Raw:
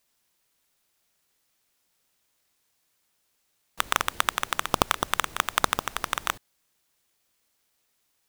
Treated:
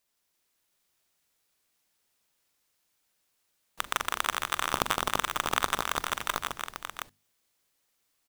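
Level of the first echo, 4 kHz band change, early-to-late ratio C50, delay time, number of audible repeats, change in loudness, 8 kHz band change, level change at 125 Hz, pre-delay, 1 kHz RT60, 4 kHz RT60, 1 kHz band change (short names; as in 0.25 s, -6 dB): -16.0 dB, -2.5 dB, none, 40 ms, 4, -3.5 dB, -2.5 dB, -3.5 dB, none, none, none, -2.5 dB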